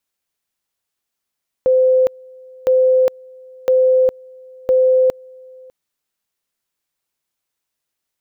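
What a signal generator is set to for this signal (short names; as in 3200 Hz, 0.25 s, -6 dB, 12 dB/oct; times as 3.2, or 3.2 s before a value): two-level tone 515 Hz -9.5 dBFS, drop 27.5 dB, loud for 0.41 s, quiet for 0.60 s, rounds 4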